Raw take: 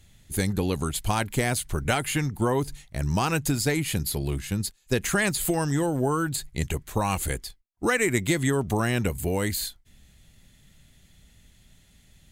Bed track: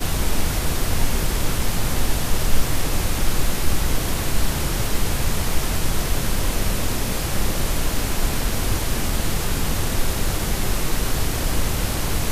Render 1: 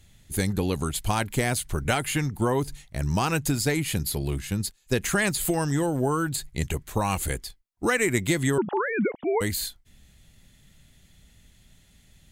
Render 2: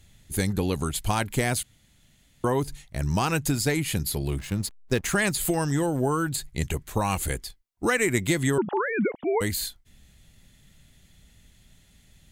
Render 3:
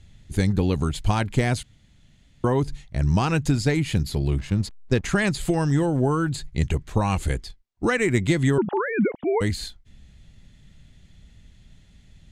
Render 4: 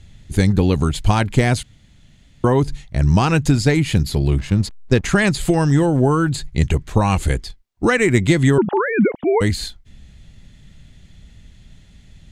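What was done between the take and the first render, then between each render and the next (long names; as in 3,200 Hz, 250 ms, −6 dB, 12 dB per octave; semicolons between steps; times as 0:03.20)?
0:08.58–0:09.41: three sine waves on the formant tracks
0:01.63–0:02.44: fill with room tone; 0:04.39–0:05.16: slack as between gear wheels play −37 dBFS
low-pass filter 6,100 Hz 12 dB per octave; low-shelf EQ 280 Hz +7 dB
level +6 dB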